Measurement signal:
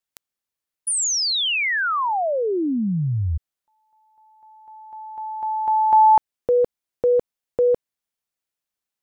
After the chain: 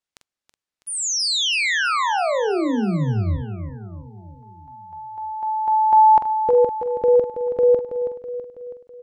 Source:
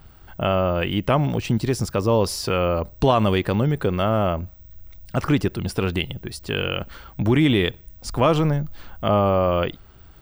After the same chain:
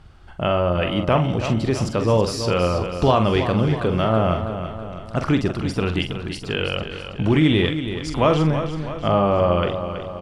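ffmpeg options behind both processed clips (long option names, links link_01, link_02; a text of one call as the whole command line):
ffmpeg -i in.wav -filter_complex "[0:a]lowpass=7300,asplit=2[link_01][link_02];[link_02]adelay=45,volume=-8dB[link_03];[link_01][link_03]amix=inputs=2:normalize=0,aecho=1:1:326|652|978|1304|1630|1956:0.335|0.178|0.0941|0.0499|0.0264|0.014" out.wav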